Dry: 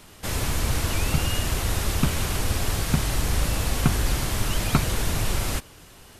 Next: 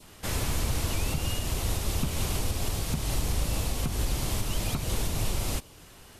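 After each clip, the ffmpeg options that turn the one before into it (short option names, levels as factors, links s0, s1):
-af "alimiter=limit=0.178:level=0:latency=1:release=183,adynamicequalizer=threshold=0.00282:dfrequency=1600:dqfactor=1.6:tfrequency=1600:tqfactor=1.6:attack=5:release=100:ratio=0.375:range=3.5:mode=cutabove:tftype=bell,volume=0.75"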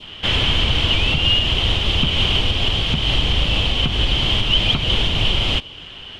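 -af "lowpass=f=3100:t=q:w=10,volume=2.66"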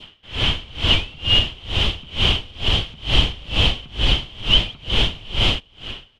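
-af "dynaudnorm=f=220:g=5:m=3.76,aecho=1:1:325|650|975|1300:0.119|0.063|0.0334|0.0177,aeval=exprs='val(0)*pow(10,-26*(0.5-0.5*cos(2*PI*2.2*n/s))/20)':c=same,volume=0.891"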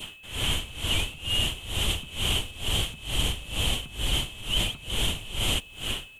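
-af "areverse,acompressor=threshold=0.0447:ratio=5,areverse,aeval=exprs='val(0)+0.00316*sin(2*PI*2600*n/s)':c=same,aexciter=amount=15.9:drive=5.7:freq=7400,volume=1.33"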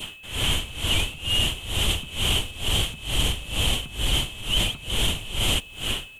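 -af "asoftclip=type=tanh:threshold=0.188,volume=1.58"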